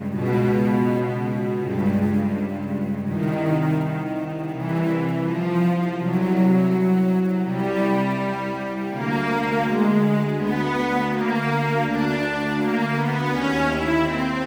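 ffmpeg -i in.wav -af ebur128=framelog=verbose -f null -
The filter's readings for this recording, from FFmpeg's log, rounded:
Integrated loudness:
  I:         -22.0 LUFS
  Threshold: -32.0 LUFS
Loudness range:
  LRA:         2.7 LU
  Threshold: -42.1 LUFS
  LRA low:   -23.6 LUFS
  LRA high:  -20.9 LUFS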